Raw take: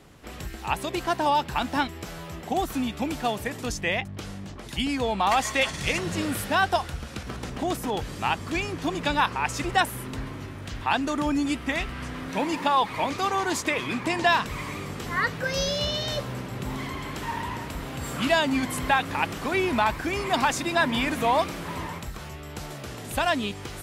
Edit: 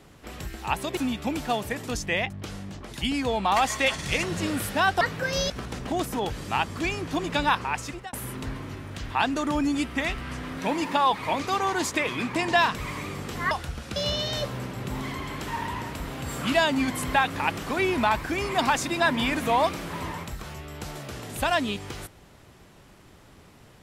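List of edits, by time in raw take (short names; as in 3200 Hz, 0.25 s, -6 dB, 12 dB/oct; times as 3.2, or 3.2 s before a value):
0.97–2.72 cut
6.76–7.21 swap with 15.22–15.71
9.15–9.84 fade out equal-power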